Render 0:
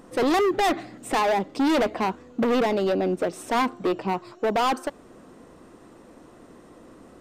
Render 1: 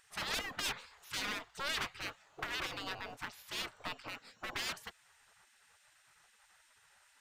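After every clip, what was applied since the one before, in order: spectral gate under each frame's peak -20 dB weak; gain -3.5 dB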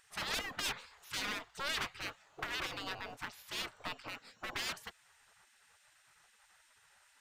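nothing audible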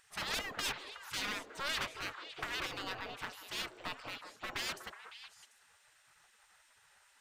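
delay with a stepping band-pass 0.185 s, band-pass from 460 Hz, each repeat 1.4 oct, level -4.5 dB

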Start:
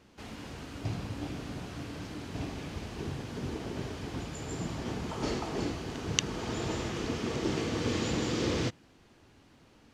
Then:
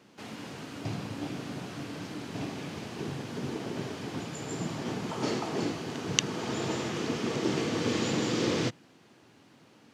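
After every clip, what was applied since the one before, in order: HPF 120 Hz 24 dB/oct; gain +2.5 dB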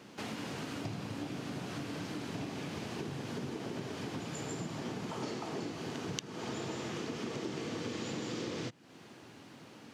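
compressor 6:1, threshold -42 dBFS, peak gain reduction 22 dB; gain +5 dB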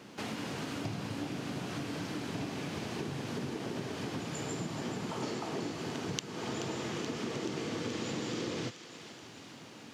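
thinning echo 0.429 s, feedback 71%, high-pass 1000 Hz, level -10 dB; gain +2 dB

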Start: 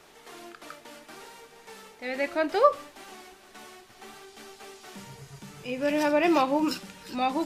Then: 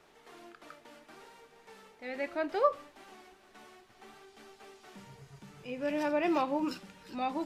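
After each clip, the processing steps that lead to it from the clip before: high shelf 4300 Hz -8 dB; gain -6.5 dB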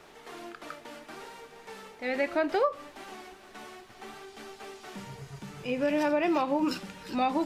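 compressor 6:1, threshold -32 dBFS, peak gain reduction 11.5 dB; gain +9 dB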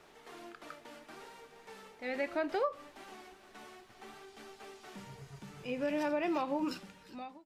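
ending faded out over 0.84 s; gain -6.5 dB

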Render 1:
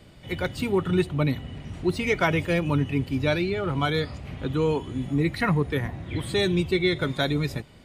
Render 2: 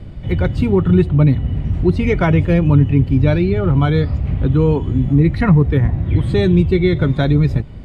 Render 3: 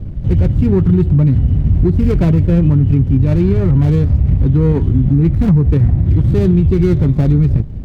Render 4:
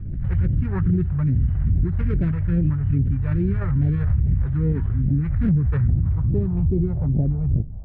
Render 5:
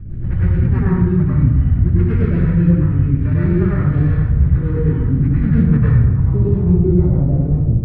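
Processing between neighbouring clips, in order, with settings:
RIAA curve playback; in parallel at -1 dB: compressor, threshold -22 dBFS, peak gain reduction 12 dB; on the sum: gain +1 dB
median filter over 41 samples; low shelf 350 Hz +9.5 dB; limiter -3.5 dBFS, peak gain reduction 9 dB; gain -1 dB
phaser stages 2, 2.4 Hz, lowest notch 270–1100 Hz; low-pass sweep 1600 Hz -> 730 Hz, 5.66–6.8; backwards sustainer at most 35 dB/s; gain -8.5 dB
plate-style reverb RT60 1.1 s, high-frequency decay 0.8×, pre-delay 85 ms, DRR -7.5 dB

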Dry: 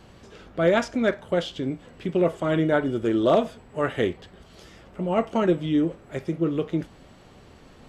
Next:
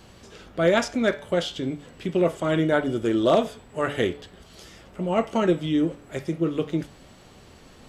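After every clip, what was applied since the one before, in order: high shelf 3700 Hz +8 dB; de-hum 144 Hz, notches 30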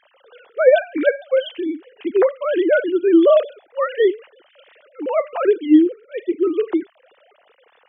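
sine-wave speech; gain +6.5 dB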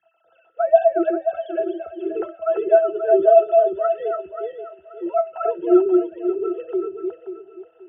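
regenerating reverse delay 0.266 s, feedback 51%, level -3 dB; frequency shift +53 Hz; octave resonator E, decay 0.12 s; gain +5.5 dB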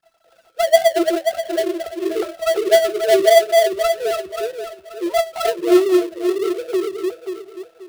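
switching dead time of 0.19 ms; in parallel at -1 dB: compressor, threshold -25 dBFS, peak gain reduction 16.5 dB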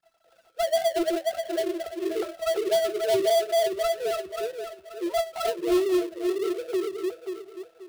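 soft clip -10.5 dBFS, distortion -12 dB; gain -6 dB

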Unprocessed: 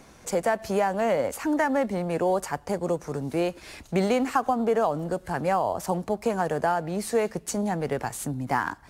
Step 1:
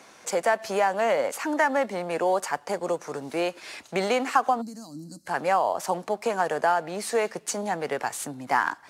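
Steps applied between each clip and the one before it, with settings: weighting filter A; spectral gain 4.62–5.26, 330–3900 Hz -28 dB; gain +3 dB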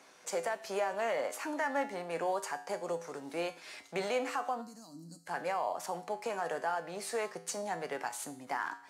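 limiter -15.5 dBFS, peak gain reduction 8 dB; low shelf 180 Hz -7.5 dB; resonator 56 Hz, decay 0.5 s, harmonics odd, mix 70%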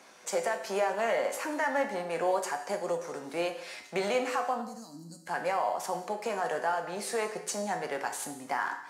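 non-linear reverb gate 0.28 s falling, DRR 7 dB; gain +3.5 dB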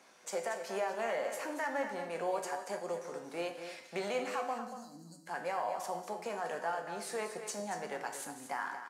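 echo 0.233 s -9.5 dB; gain -6.5 dB

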